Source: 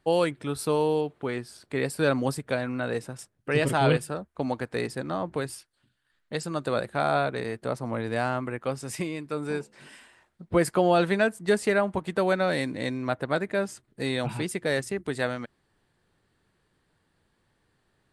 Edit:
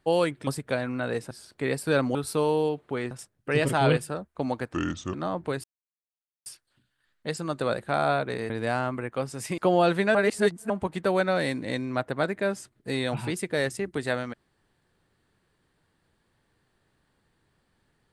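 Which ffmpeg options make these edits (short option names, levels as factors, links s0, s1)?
-filter_complex "[0:a]asplit=12[s0][s1][s2][s3][s4][s5][s6][s7][s8][s9][s10][s11];[s0]atrim=end=0.472[s12];[s1]atrim=start=2.268:end=3.112[s13];[s2]atrim=start=1.428:end=2.272[s14];[s3]atrim=start=0.468:end=1.432[s15];[s4]atrim=start=3.108:end=4.734[s16];[s5]atrim=start=4.73:end=5.02,asetpts=PTS-STARTPTS,asetrate=31311,aresample=44100[s17];[s6]atrim=start=5.016:end=5.52,asetpts=PTS-STARTPTS,afade=t=out:st=0.5:d=0.004:c=hsin,apad=pad_dur=0.82[s18];[s7]atrim=start=5.52:end=7.562,asetpts=PTS-STARTPTS,afade=t=in:d=0.004:c=hsin[s19];[s8]atrim=start=7.988:end=9.072[s20];[s9]atrim=start=10.698:end=11.272[s21];[s10]atrim=start=11.268:end=11.822,asetpts=PTS-STARTPTS,areverse[s22];[s11]atrim=start=11.818[s23];[s12][s13]acrossfade=d=0.004:c1=hsin:c2=hsin[s24];[s24][s14]acrossfade=d=0.004:c1=hsin:c2=hsin[s25];[s25][s15]acrossfade=d=0.004:c1=hsin:c2=hsin[s26];[s26][s16]acrossfade=d=0.004:c1=hsin:c2=hsin[s27];[s27][s17]acrossfade=d=0.004:c1=hsin:c2=hsin[s28];[s18][s19]concat=n=2:v=0:a=1[s29];[s28][s29]acrossfade=d=0.004:c1=hsin:c2=hsin[s30];[s30][s20]acrossfade=d=0.004:c1=hsin:c2=hsin[s31];[s31][s21]acrossfade=d=0.004:c1=hsin:c2=hsin[s32];[s32][s22]acrossfade=d=0.004:c1=hsin:c2=hsin[s33];[s33][s23]acrossfade=d=0.004:c1=hsin:c2=hsin"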